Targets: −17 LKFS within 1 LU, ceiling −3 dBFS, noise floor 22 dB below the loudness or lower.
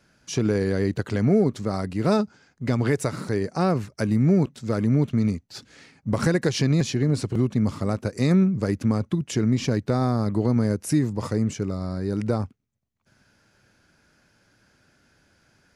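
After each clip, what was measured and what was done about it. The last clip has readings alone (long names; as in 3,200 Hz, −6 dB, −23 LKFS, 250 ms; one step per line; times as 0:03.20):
integrated loudness −24.0 LKFS; sample peak −8.5 dBFS; target loudness −17.0 LKFS
→ level +7 dB
brickwall limiter −3 dBFS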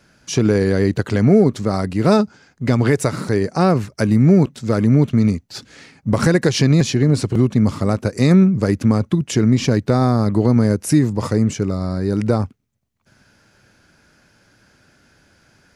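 integrated loudness −17.0 LKFS; sample peak −3.0 dBFS; background noise floor −57 dBFS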